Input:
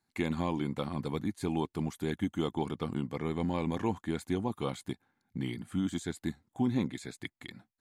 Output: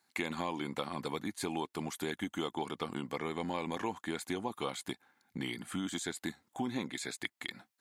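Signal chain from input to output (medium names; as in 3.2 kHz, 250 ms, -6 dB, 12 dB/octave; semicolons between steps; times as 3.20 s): high-pass 710 Hz 6 dB/octave; compression 2.5:1, threshold -44 dBFS, peak gain reduction 9 dB; trim +9 dB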